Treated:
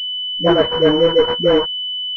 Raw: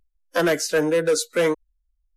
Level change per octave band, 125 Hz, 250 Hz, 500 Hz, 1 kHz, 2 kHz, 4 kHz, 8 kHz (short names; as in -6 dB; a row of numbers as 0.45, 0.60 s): +8.0 dB, +7.0 dB, +6.5 dB, +8.0 dB, -1.0 dB, +17.0 dB, under -25 dB